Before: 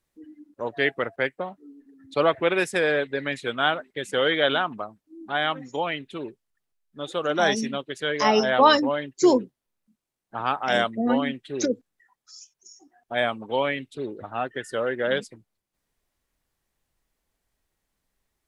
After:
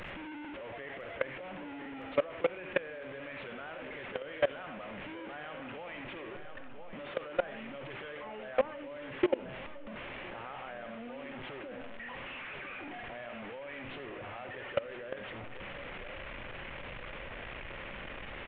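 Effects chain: delta modulation 16 kbps, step -24 dBFS; bell 550 Hz +9 dB 0.25 oct; non-linear reverb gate 0.11 s rising, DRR 8.5 dB; compressor 8:1, threshold -21 dBFS, peak gain reduction 11.5 dB; feedback echo 1.009 s, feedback 49%, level -11.5 dB; dynamic EQ 2300 Hz, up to +5 dB, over -39 dBFS, Q 1; level quantiser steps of 21 dB; gain -1.5 dB

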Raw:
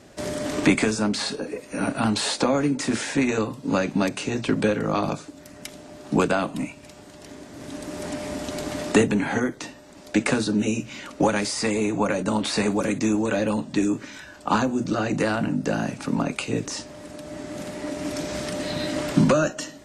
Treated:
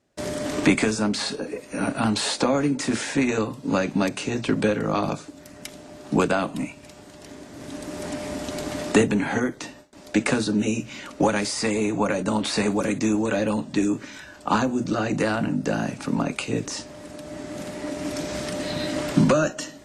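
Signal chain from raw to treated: gate with hold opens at -36 dBFS

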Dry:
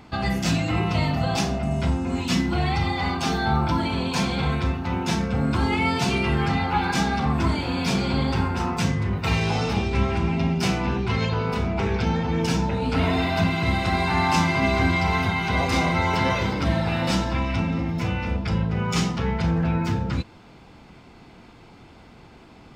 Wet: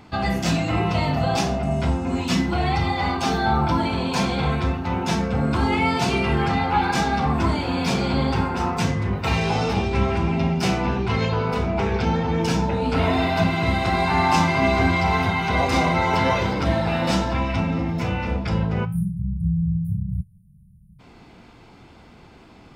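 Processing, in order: spectral delete 18.85–21, 200–9100 Hz; dynamic EQ 650 Hz, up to +4 dB, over -35 dBFS, Q 0.74; flange 0.4 Hz, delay 9.5 ms, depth 9.2 ms, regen -71%; gain +4.5 dB

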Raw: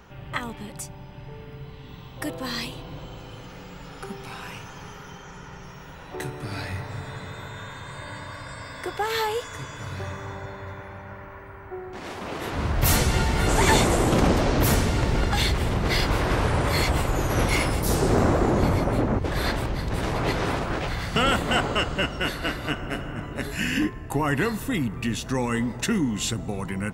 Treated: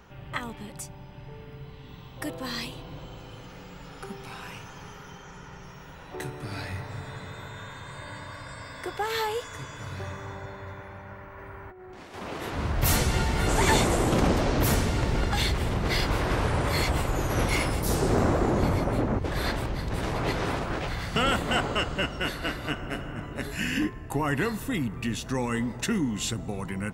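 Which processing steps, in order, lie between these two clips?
11.38–12.14 negative-ratio compressor -41 dBFS, ratio -1; gain -3 dB

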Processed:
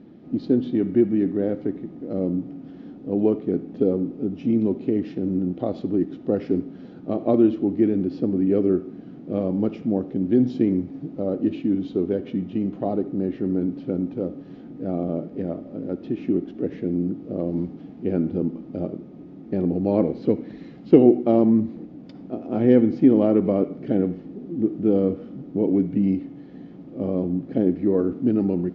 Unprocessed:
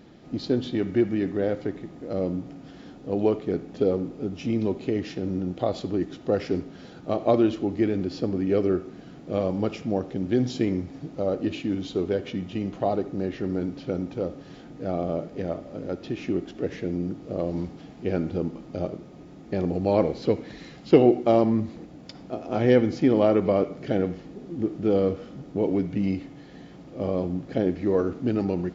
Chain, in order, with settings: LPF 3700 Hz 12 dB/oct; bell 250 Hz +14 dB 2 oct; gain -7.5 dB

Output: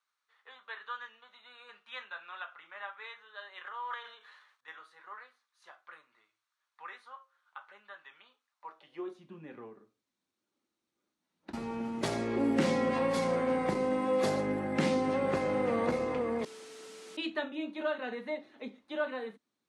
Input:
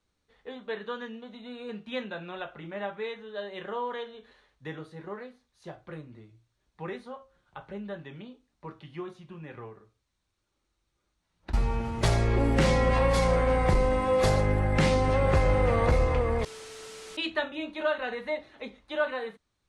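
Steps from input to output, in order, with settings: 3.66–4.68 transient shaper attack -8 dB, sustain +8 dB; high-pass sweep 1200 Hz -> 240 Hz, 8.51–9.27; gain -6.5 dB

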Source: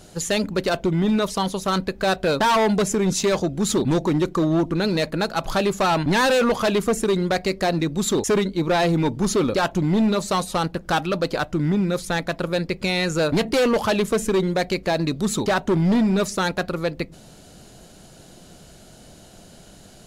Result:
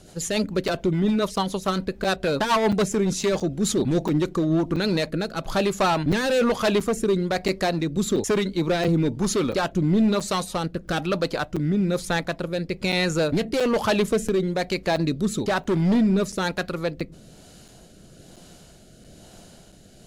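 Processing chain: rotary speaker horn 7 Hz, later 1.1 Hz, at 3.64; crackling interface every 0.68 s, samples 256, zero, from 0.68; 7.96–8.88 three-band squash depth 40%

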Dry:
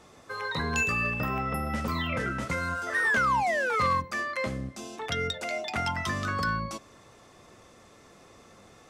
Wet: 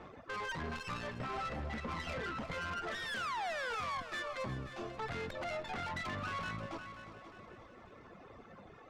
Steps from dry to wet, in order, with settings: tracing distortion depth 0.26 ms; reverb removal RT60 0.8 s; LPF 2100 Hz 12 dB/oct; reverb removal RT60 1.6 s; in parallel at -1 dB: compressor, threshold -42 dBFS, peak gain reduction 17 dB; on the sum: limiter -28 dBFS, peak gain reduction 10.5 dB; tube stage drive 39 dB, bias 0.7; multi-head echo 0.178 s, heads second and third, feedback 44%, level -13 dB; on a send at -18 dB: reverb RT60 1.0 s, pre-delay 37 ms; on the sum: gain +2.5 dB

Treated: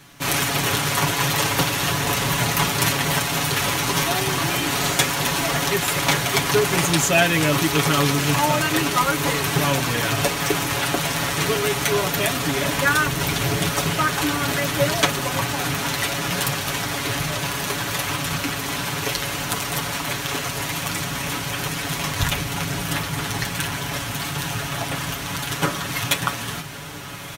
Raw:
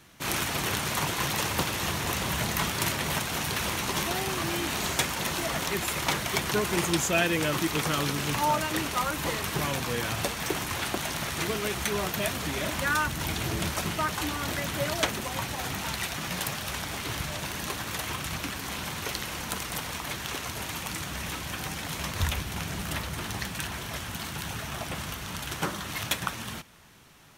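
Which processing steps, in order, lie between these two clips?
comb 7.1 ms, depth 72%; on a send: diffused feedback echo 1.319 s, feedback 79%, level -13.5 dB; on the sum: gain +6 dB

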